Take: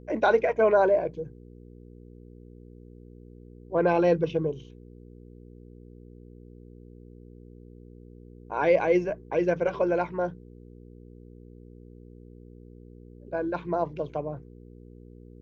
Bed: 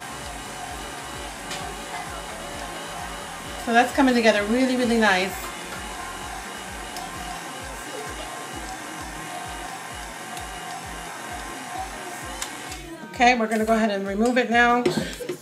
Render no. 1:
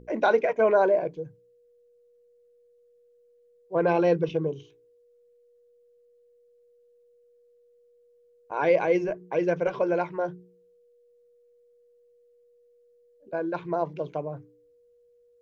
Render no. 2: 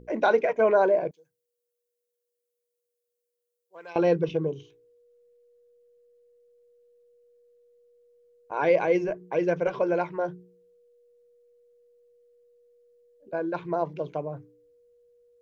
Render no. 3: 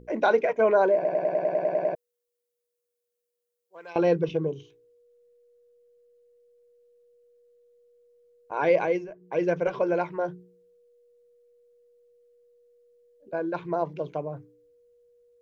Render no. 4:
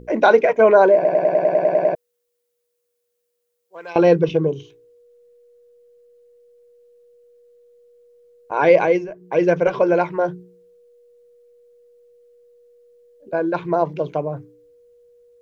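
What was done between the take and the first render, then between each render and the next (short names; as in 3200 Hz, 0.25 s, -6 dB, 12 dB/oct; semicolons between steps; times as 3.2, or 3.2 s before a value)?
de-hum 60 Hz, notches 7
1.11–3.96 differentiator
0.95 stutter in place 0.10 s, 10 plays; 8.83–9.4 dip -12.5 dB, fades 0.25 s
gain +8.5 dB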